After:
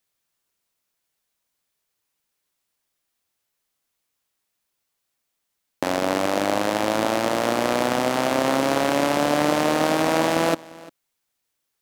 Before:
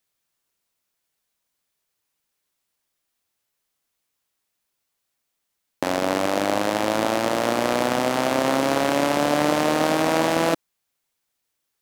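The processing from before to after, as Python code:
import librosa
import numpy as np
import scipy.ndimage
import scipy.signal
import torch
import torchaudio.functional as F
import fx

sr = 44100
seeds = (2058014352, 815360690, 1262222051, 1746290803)

y = x + 10.0 ** (-21.5 / 20.0) * np.pad(x, (int(348 * sr / 1000.0), 0))[:len(x)]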